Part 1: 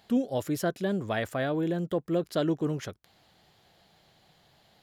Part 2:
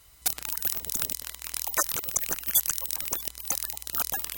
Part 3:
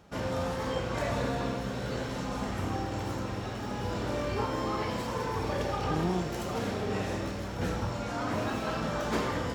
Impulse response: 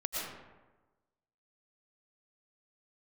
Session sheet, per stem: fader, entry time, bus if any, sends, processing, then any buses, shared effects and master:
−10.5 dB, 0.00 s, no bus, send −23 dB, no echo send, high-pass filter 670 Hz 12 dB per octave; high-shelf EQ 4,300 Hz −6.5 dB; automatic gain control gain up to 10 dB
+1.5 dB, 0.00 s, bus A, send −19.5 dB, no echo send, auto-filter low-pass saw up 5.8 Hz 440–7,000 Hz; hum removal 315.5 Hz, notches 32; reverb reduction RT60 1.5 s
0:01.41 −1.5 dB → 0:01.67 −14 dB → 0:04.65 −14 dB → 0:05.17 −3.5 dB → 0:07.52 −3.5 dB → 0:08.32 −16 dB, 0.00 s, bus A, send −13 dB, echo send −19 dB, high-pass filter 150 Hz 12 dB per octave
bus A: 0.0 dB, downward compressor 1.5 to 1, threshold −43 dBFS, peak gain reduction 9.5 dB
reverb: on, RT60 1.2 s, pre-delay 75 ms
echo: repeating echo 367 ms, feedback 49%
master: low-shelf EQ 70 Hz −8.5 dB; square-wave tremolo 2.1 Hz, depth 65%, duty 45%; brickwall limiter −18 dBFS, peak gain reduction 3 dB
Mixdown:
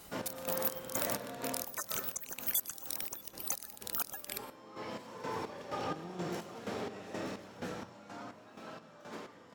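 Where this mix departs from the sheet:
stem 1: muted
stem 2: missing auto-filter low-pass saw up 5.8 Hz 440–7,000 Hz

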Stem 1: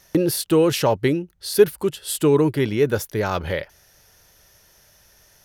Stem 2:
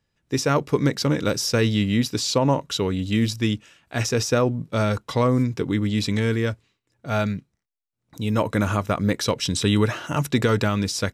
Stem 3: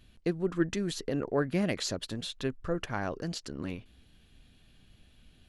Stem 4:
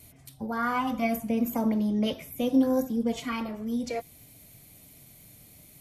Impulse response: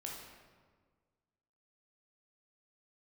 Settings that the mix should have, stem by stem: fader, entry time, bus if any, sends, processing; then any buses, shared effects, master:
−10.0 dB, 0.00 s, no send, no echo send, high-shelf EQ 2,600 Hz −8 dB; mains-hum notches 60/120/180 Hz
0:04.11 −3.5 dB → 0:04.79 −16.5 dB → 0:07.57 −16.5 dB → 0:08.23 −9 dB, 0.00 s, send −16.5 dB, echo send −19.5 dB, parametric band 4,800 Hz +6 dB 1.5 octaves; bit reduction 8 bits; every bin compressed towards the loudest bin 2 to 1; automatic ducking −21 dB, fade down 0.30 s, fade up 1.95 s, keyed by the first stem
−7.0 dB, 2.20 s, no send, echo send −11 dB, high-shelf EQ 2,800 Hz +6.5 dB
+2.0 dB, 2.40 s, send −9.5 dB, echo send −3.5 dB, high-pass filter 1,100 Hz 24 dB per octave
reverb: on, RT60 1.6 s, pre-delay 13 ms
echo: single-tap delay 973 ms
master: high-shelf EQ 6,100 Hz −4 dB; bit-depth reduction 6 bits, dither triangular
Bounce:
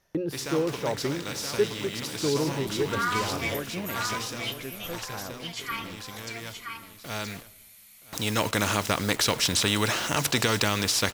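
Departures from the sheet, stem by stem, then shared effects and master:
stem 2 −3.5 dB → +5.0 dB
master: missing bit-depth reduction 6 bits, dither triangular

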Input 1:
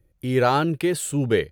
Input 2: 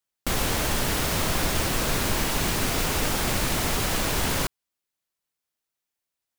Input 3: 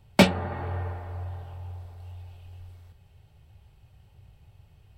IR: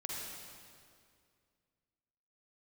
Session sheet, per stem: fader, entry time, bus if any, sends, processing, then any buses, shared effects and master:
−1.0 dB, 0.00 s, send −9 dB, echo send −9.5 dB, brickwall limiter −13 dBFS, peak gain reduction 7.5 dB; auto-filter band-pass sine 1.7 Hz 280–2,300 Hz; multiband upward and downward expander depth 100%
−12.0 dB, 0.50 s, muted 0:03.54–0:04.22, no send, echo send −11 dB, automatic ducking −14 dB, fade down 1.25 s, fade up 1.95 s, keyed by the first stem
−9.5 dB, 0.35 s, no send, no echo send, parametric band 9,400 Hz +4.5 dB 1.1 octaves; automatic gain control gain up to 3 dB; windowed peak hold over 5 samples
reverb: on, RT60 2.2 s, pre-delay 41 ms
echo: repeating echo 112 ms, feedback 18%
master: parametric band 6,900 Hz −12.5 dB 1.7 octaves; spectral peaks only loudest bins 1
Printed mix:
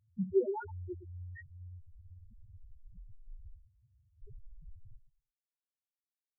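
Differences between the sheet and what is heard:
stem 1: send −9 dB → −15 dB
stem 3: entry 0.35 s → 0.00 s

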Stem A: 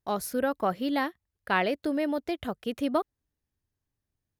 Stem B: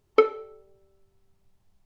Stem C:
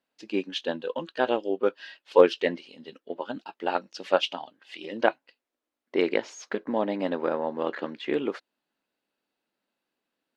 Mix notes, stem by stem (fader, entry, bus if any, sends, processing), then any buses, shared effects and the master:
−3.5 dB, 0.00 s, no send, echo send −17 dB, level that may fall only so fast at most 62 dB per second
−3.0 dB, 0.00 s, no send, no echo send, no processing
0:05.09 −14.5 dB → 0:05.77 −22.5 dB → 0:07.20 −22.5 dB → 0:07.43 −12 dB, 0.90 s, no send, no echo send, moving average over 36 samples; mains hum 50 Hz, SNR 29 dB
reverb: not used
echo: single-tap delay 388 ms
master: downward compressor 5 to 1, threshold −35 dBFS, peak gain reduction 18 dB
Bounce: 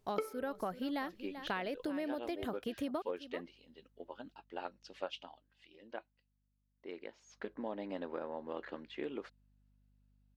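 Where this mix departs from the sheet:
stem A: missing level that may fall only so fast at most 62 dB per second
stem C: missing moving average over 36 samples

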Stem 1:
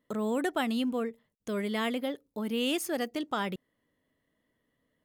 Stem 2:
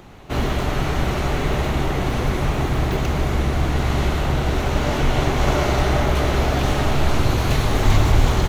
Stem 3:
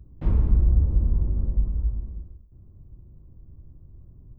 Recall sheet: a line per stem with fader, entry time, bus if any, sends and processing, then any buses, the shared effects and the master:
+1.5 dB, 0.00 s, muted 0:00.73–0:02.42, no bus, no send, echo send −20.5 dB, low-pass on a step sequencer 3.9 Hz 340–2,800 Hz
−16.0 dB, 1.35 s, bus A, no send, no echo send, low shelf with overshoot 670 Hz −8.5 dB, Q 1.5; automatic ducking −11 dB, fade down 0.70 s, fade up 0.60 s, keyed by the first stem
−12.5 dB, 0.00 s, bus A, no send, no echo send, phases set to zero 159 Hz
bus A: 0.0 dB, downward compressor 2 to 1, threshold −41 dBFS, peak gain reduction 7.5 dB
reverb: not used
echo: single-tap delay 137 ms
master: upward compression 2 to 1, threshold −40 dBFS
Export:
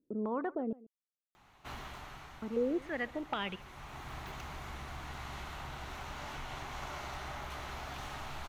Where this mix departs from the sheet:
stem 1 +1.5 dB → −7.5 dB
stem 3: muted
master: missing upward compression 2 to 1, threshold −40 dBFS

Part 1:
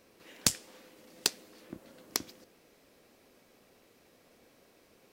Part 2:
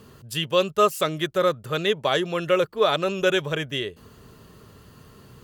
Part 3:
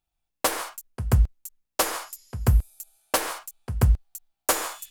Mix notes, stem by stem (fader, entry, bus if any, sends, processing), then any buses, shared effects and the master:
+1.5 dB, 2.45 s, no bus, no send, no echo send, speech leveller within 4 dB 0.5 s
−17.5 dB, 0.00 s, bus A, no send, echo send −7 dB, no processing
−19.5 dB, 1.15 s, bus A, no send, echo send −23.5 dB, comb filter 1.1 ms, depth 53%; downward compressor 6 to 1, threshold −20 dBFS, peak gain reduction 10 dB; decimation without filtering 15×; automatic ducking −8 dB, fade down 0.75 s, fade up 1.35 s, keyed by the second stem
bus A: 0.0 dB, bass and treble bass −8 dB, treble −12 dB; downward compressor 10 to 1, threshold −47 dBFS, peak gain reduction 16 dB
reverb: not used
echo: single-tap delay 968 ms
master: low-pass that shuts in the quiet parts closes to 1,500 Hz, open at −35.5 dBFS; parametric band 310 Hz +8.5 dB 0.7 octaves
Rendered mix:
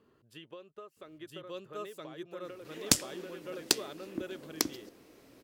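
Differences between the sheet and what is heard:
stem 3: muted
master: missing low-pass that shuts in the quiet parts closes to 1,500 Hz, open at −35.5 dBFS

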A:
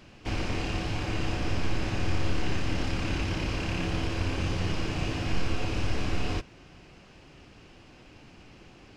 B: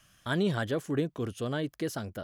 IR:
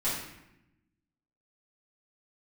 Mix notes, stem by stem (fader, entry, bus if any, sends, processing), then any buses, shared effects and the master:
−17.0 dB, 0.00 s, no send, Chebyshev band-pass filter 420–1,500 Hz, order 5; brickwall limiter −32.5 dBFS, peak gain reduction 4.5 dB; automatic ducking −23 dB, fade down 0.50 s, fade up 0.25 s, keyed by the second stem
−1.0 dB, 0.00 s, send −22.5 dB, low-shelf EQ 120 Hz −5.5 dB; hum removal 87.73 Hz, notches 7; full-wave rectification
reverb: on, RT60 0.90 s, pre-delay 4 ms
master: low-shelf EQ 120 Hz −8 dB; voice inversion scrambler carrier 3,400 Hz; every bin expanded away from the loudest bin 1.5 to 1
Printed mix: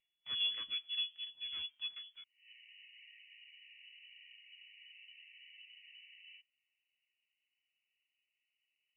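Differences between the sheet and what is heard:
stem A −17.0 dB → −8.5 dB
stem B −1.0 dB → −8.0 dB

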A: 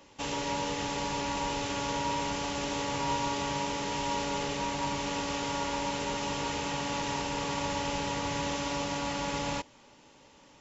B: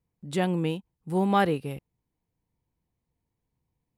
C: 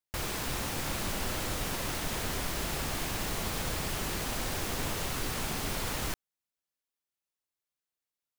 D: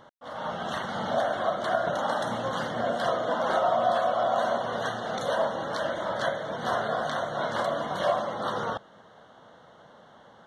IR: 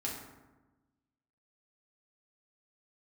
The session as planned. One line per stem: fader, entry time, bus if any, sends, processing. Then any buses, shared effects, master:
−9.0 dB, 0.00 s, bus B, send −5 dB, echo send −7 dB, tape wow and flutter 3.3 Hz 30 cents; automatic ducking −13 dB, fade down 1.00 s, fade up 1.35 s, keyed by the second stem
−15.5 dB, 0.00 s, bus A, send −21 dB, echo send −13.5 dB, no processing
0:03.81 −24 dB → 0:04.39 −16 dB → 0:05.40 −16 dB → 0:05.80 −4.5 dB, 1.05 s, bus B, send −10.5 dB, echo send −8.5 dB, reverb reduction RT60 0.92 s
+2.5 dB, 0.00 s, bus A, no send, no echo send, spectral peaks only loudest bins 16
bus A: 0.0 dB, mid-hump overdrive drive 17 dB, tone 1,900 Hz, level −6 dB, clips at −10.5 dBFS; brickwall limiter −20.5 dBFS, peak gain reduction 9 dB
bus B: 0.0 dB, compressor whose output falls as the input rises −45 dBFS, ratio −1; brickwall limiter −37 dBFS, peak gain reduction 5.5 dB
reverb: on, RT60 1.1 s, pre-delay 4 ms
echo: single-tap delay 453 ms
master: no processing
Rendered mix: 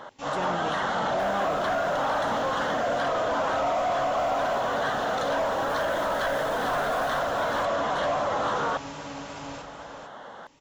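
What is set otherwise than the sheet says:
stem B −15.5 dB → −8.5 dB
stem D: missing spectral peaks only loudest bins 16

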